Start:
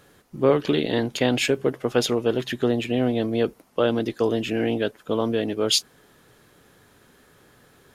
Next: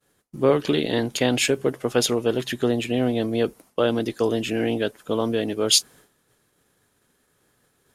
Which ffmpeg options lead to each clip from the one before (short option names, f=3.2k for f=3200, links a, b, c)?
-af "agate=range=-33dB:threshold=-46dB:ratio=3:detection=peak,equalizer=f=9.5k:t=o:w=1.3:g=8"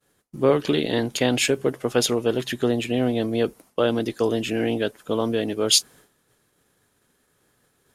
-af anull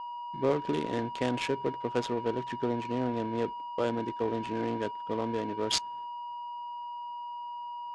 -af "aeval=exprs='val(0)+0.0501*sin(2*PI*960*n/s)':c=same,adynamicsmooth=sensitivity=1.5:basefreq=650,lowpass=f=9.4k:w=0.5412,lowpass=f=9.4k:w=1.3066,volume=-9dB"